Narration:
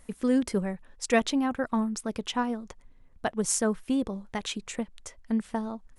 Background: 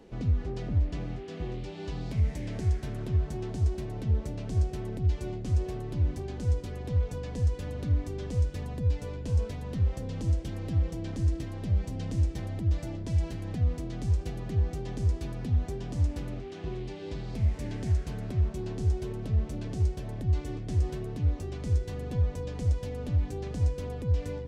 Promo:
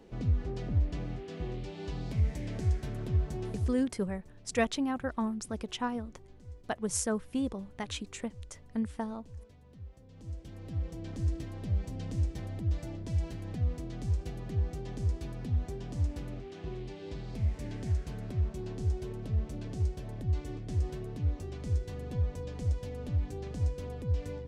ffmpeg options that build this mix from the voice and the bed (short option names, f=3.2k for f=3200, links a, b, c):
-filter_complex "[0:a]adelay=3450,volume=-5dB[a];[1:a]volume=14.5dB,afade=t=out:st=3.5:d=0.36:silence=0.11885,afade=t=in:st=10.08:d=1.21:silence=0.149624[b];[a][b]amix=inputs=2:normalize=0"